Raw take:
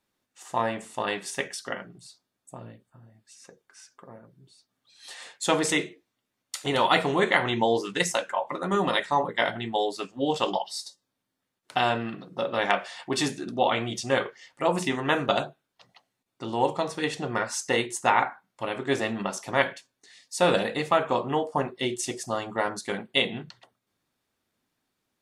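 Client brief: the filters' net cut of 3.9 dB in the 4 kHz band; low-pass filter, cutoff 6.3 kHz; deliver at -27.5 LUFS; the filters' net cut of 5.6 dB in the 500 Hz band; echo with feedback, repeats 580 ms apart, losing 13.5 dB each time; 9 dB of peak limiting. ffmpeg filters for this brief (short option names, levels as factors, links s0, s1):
-af "lowpass=6300,equalizer=f=500:t=o:g=-7,equalizer=f=4000:t=o:g=-4.5,alimiter=limit=0.158:level=0:latency=1,aecho=1:1:580|1160:0.211|0.0444,volume=1.58"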